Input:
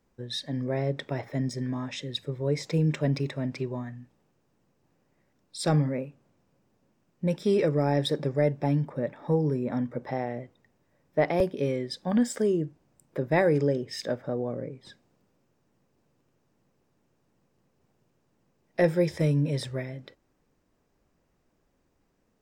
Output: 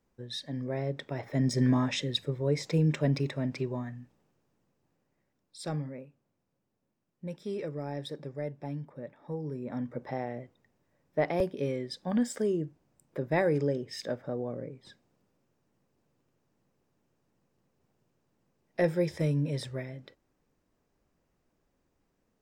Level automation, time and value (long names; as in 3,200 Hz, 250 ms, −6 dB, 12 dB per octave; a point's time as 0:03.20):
0:01.14 −4.5 dB
0:01.67 +7.5 dB
0:02.45 −1 dB
0:03.98 −1 dB
0:06.00 −12 dB
0:09.37 −12 dB
0:09.92 −4 dB